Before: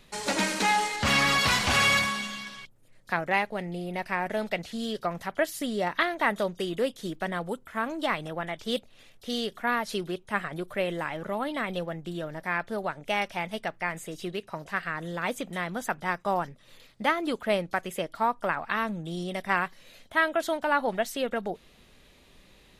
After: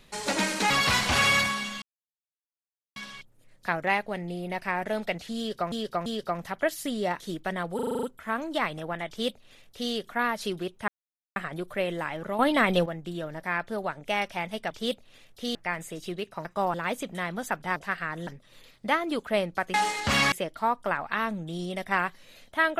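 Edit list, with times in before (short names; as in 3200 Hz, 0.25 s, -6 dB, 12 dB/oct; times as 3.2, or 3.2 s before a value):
0.7–1.28 move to 17.9
2.4 insert silence 1.14 s
4.82–5.16 loop, 3 plays
5.96–6.96 cut
7.51 stutter 0.04 s, 8 plays
8.56–9.4 copy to 13.71
10.36 insert silence 0.48 s
11.39–11.86 gain +8.5 dB
14.61–15.12 swap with 16.14–16.43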